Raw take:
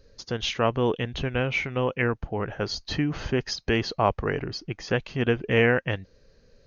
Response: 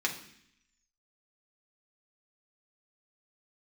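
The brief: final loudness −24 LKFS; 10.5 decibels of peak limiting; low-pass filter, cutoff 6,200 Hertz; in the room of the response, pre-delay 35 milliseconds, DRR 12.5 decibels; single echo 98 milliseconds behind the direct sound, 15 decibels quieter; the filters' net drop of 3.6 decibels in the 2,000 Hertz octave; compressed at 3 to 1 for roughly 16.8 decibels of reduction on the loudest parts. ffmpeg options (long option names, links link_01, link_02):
-filter_complex "[0:a]lowpass=6200,equalizer=frequency=2000:width_type=o:gain=-4.5,acompressor=threshold=-41dB:ratio=3,alimiter=level_in=11dB:limit=-24dB:level=0:latency=1,volume=-11dB,aecho=1:1:98:0.178,asplit=2[link_01][link_02];[1:a]atrim=start_sample=2205,adelay=35[link_03];[link_02][link_03]afir=irnorm=-1:irlink=0,volume=-19.5dB[link_04];[link_01][link_04]amix=inputs=2:normalize=0,volume=21dB"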